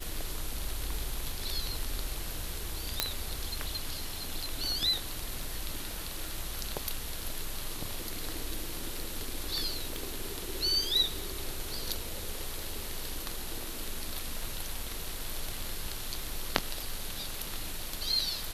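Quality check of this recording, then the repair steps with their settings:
tick 33 1/3 rpm
3 pop -7 dBFS
9.96 pop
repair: de-click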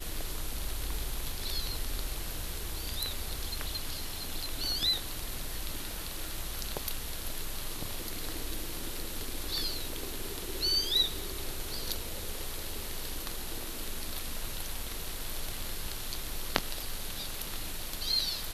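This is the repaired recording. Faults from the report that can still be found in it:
9.96 pop

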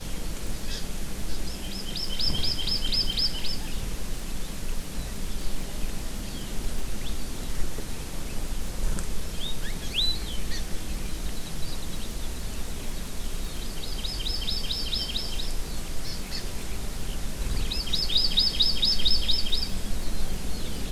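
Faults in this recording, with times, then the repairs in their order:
crackle 20/s -32 dBFS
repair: de-click

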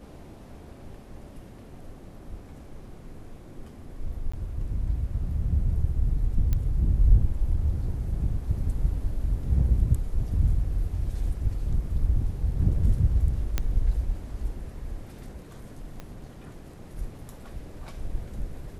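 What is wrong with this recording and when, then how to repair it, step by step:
4.32–4.33 gap 15 ms
6.53 pop -15 dBFS
13.58 pop -12 dBFS
16 pop -24 dBFS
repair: de-click; interpolate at 4.32, 15 ms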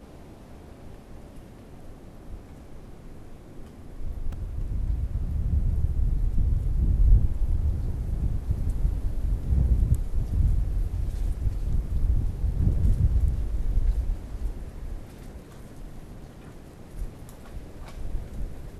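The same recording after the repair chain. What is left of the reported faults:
6.53 pop
16 pop

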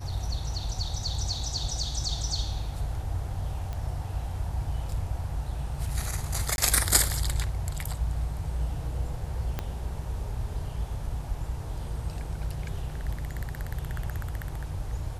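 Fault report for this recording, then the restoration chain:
3.73 pop -23 dBFS
6.56–6.58 gap 21 ms
9.59 pop -16 dBFS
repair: de-click; interpolate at 6.56, 21 ms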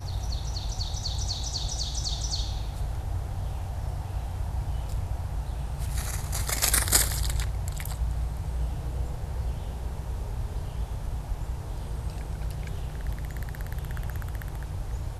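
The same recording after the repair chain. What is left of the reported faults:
9.59 pop

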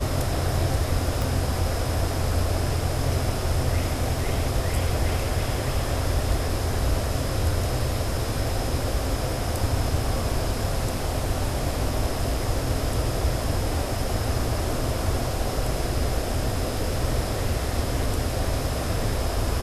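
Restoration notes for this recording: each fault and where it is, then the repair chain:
1.22 pop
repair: de-click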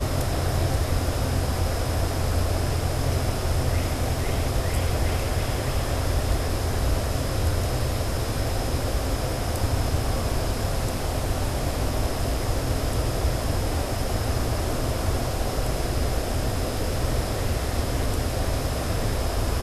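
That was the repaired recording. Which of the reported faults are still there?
none

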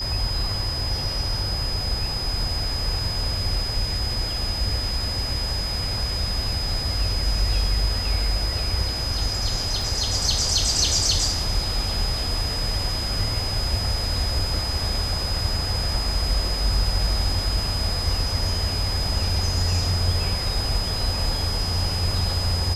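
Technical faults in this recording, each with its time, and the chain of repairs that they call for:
tone 5000 Hz -27 dBFS
9.82 gap 2.3 ms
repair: notch 5000 Hz, Q 30; interpolate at 9.82, 2.3 ms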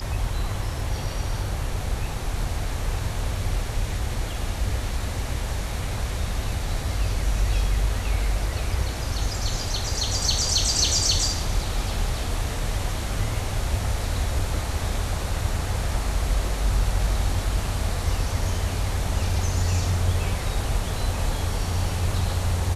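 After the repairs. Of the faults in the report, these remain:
none

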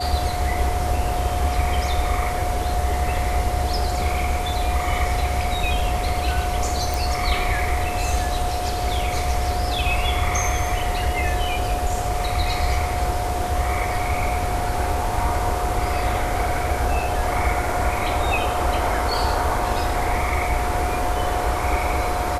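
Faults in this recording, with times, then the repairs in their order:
tone 720 Hz -26 dBFS
6.94 pop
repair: de-click; notch 720 Hz, Q 30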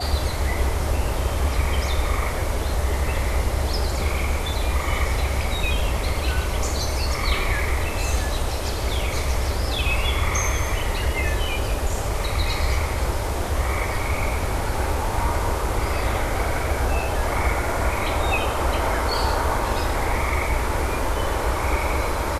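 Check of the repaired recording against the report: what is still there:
none

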